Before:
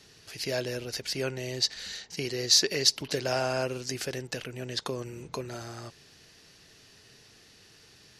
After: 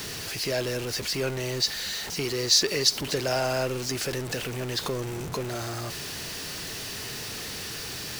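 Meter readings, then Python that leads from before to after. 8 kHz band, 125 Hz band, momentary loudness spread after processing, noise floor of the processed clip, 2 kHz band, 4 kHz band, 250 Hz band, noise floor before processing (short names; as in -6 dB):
+2.5 dB, +5.0 dB, 11 LU, -36 dBFS, +4.5 dB, +2.5 dB, +4.0 dB, -57 dBFS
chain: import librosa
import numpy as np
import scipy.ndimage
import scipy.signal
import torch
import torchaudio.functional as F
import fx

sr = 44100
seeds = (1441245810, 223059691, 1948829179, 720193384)

y = x + 0.5 * 10.0 ** (-30.5 / 20.0) * np.sign(x)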